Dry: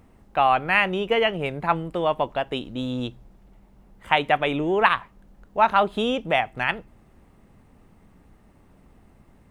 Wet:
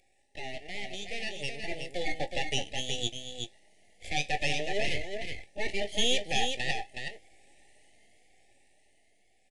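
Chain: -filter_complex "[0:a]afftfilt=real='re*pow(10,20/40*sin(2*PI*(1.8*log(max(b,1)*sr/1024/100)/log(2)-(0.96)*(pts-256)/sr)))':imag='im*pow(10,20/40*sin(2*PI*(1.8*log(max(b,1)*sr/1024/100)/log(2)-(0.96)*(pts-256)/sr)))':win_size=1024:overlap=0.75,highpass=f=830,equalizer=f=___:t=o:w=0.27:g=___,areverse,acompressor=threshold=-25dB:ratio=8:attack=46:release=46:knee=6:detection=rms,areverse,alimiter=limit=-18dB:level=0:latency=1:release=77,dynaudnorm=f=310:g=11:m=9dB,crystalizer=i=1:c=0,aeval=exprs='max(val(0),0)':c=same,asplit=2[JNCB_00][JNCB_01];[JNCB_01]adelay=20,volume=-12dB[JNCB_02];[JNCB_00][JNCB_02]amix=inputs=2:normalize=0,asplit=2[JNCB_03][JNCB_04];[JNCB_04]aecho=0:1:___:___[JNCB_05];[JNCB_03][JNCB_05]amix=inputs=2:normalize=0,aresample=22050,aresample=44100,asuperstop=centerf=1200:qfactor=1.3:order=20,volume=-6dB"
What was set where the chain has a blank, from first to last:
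1100, 9.5, 370, 0.531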